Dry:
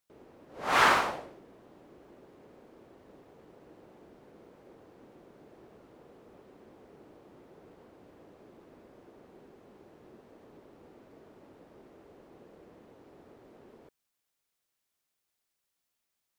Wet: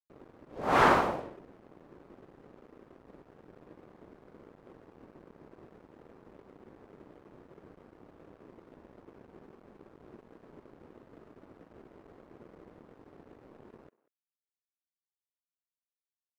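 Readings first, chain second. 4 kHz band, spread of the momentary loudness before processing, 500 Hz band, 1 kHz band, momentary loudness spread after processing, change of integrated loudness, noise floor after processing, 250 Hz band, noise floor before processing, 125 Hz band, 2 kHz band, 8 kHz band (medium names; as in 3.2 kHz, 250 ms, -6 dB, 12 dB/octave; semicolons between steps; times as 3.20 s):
-7.0 dB, 18 LU, +4.5 dB, +0.5 dB, 15 LU, -1.0 dB, under -85 dBFS, +6.0 dB, -84 dBFS, +7.0 dB, -3.5 dB, no reading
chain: tilt shelf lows +8.5 dB, about 1.1 kHz; crossover distortion -52 dBFS; speakerphone echo 190 ms, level -20 dB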